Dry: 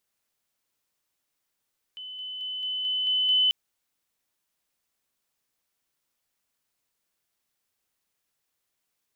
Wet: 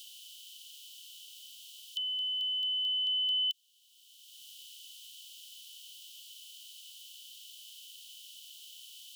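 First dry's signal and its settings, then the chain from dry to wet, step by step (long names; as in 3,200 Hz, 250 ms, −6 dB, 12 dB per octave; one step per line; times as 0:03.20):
level staircase 3,020 Hz −36.5 dBFS, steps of 3 dB, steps 7, 0.22 s 0.00 s
compressor on every frequency bin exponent 0.6
Butterworth high-pass 2,900 Hz 72 dB per octave
multiband upward and downward compressor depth 70%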